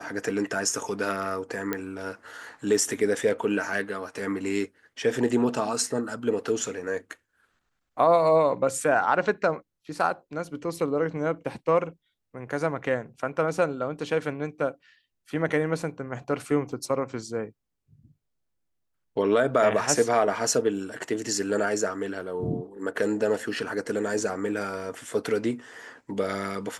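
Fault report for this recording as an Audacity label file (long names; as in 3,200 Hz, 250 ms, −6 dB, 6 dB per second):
1.730000	1.730000	click −13 dBFS
16.720000	16.720000	drop-out 4.1 ms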